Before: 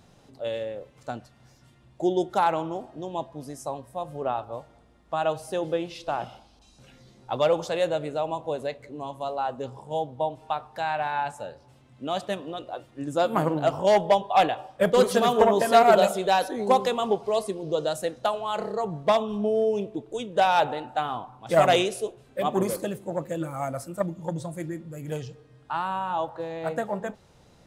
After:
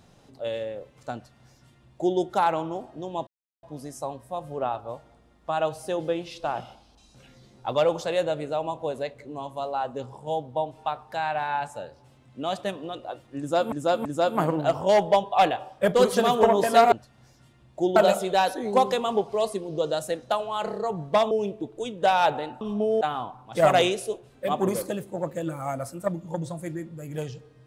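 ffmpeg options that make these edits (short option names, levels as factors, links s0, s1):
-filter_complex "[0:a]asplit=9[s0][s1][s2][s3][s4][s5][s6][s7][s8];[s0]atrim=end=3.27,asetpts=PTS-STARTPTS,afade=t=out:st=3.266:d=0.004:c=hsin,apad=pad_dur=0.36[s9];[s1]atrim=start=3.27:end=13.362,asetpts=PTS-STARTPTS,afade=t=in:d=0.004:c=hsin[s10];[s2]atrim=start=13.028:end=13.362[s11];[s3]atrim=start=13.028:end=15.902[s12];[s4]atrim=start=1.138:end=2.182[s13];[s5]atrim=start=15.898:end=19.252[s14];[s6]atrim=start=19.648:end=20.952[s15];[s7]atrim=start=19.248:end=19.652[s16];[s8]atrim=start=20.948[s17];[s9][s10]concat=n=2:v=0:a=1[s18];[s18][s11]acrossfade=d=0.004:c1=hsin:c2=hsin[s19];[s19][s12]acrossfade=d=0.004:c1=hsin:c2=hsin[s20];[s20][s13]acrossfade=d=0.004:c1=hsin:c2=hsin[s21];[s21][s14]acrossfade=d=0.004:c1=hsin:c2=hsin[s22];[s22][s15]acrossfade=d=0.004:c1=hsin:c2=hsin[s23];[s23][s16]acrossfade=d=0.004:c1=hsin:c2=hsin[s24];[s24][s17]acrossfade=d=0.004:c1=hsin:c2=hsin"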